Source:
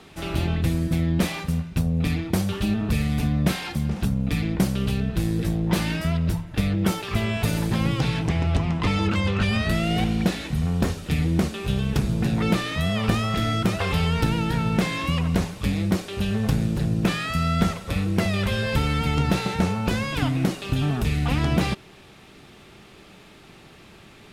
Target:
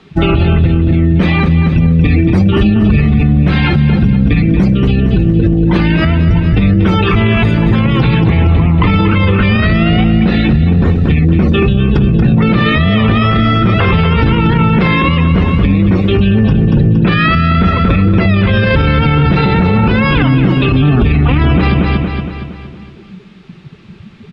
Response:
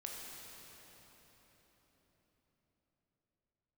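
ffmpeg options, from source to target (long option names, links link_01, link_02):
-filter_complex "[0:a]afftdn=noise_reduction=25:noise_floor=-33,lowpass=4400,acrossover=split=3200[link_01][link_02];[link_02]acompressor=threshold=-47dB:ratio=4:attack=1:release=60[link_03];[link_01][link_03]amix=inputs=2:normalize=0,equalizer=frequency=690:width_type=o:width=0.72:gain=-5.5,acompressor=threshold=-32dB:ratio=2.5,asplit=2[link_04][link_05];[link_05]aecho=0:1:232|464|696|928|1160|1392:0.376|0.192|0.0978|0.0499|0.0254|0.013[link_06];[link_04][link_06]amix=inputs=2:normalize=0,alimiter=level_in=30dB:limit=-1dB:release=50:level=0:latency=1,volume=-1.5dB"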